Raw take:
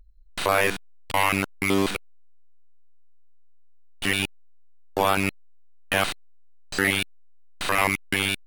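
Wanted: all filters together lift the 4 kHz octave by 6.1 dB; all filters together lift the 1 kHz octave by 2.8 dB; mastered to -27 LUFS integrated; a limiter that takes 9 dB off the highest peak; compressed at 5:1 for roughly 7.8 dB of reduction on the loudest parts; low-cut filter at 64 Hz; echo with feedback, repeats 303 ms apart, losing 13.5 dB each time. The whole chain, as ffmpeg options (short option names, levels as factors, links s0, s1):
-af "highpass=64,equalizer=f=1000:t=o:g=3,equalizer=f=4000:t=o:g=8,acompressor=threshold=0.0708:ratio=5,alimiter=limit=0.126:level=0:latency=1,aecho=1:1:303|606:0.211|0.0444,volume=1.58"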